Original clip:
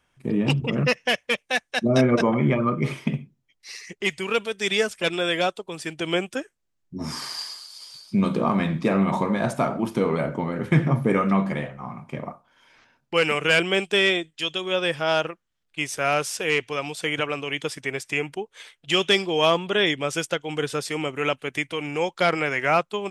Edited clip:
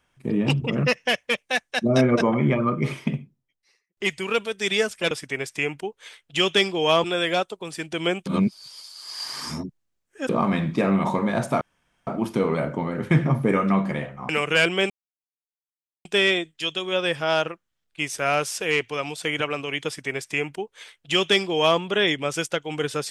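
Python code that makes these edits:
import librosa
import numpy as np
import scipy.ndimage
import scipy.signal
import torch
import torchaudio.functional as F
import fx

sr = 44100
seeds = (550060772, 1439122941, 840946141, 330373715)

y = fx.studio_fade_out(x, sr, start_s=2.99, length_s=0.98)
y = fx.edit(y, sr, fx.reverse_span(start_s=6.33, length_s=2.03),
    fx.insert_room_tone(at_s=9.68, length_s=0.46),
    fx.cut(start_s=11.9, length_s=1.33),
    fx.insert_silence(at_s=13.84, length_s=1.15),
    fx.duplicate(start_s=17.65, length_s=1.93, to_s=5.11), tone=tone)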